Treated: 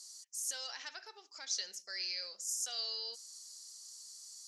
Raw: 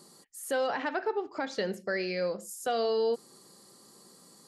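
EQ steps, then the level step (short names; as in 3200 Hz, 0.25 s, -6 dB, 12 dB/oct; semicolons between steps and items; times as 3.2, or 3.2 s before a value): band-pass 5900 Hz, Q 4.7; tilt +2 dB/oct; +10.0 dB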